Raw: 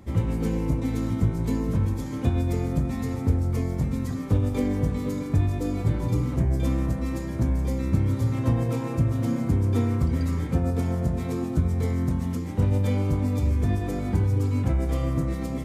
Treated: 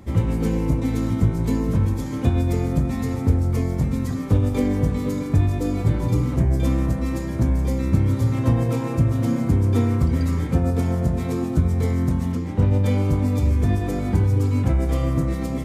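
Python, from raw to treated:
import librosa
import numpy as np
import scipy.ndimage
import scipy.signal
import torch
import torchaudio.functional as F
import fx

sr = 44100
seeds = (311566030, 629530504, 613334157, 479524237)

y = fx.high_shelf(x, sr, hz=6900.0, db=-11.5, at=(12.32, 12.86))
y = F.gain(torch.from_numpy(y), 4.0).numpy()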